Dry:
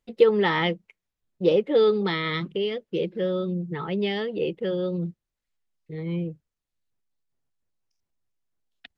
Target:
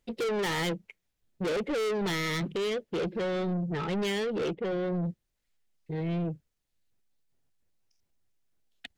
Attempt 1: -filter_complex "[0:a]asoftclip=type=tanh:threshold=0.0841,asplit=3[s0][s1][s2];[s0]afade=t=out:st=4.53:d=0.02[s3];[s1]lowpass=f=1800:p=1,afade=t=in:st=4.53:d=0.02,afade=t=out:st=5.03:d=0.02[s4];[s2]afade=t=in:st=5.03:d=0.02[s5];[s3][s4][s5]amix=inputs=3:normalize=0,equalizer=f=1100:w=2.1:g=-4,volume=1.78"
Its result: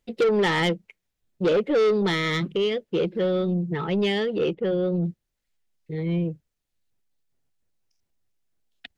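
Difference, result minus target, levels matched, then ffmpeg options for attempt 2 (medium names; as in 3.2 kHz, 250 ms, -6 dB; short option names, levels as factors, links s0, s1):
saturation: distortion -5 dB
-filter_complex "[0:a]asoftclip=type=tanh:threshold=0.0237,asplit=3[s0][s1][s2];[s0]afade=t=out:st=4.53:d=0.02[s3];[s1]lowpass=f=1800:p=1,afade=t=in:st=4.53:d=0.02,afade=t=out:st=5.03:d=0.02[s4];[s2]afade=t=in:st=5.03:d=0.02[s5];[s3][s4][s5]amix=inputs=3:normalize=0,equalizer=f=1100:w=2.1:g=-4,volume=1.78"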